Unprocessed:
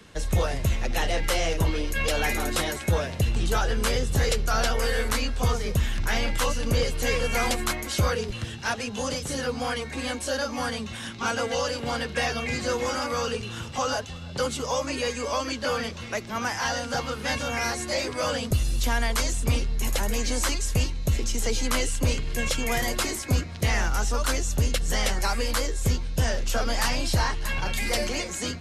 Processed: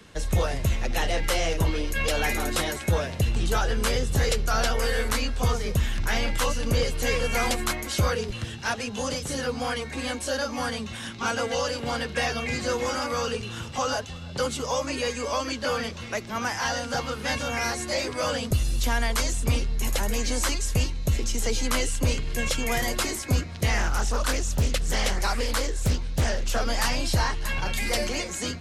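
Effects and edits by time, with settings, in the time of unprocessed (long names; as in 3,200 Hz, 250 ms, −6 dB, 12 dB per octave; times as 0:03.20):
0:23.77–0:26.60: highs frequency-modulated by the lows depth 0.58 ms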